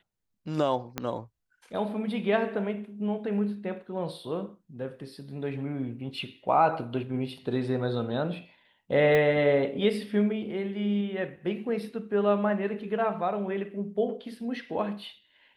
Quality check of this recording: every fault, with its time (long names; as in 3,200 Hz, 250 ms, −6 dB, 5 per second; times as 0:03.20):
0:00.98: click −14 dBFS
0:09.15: click −14 dBFS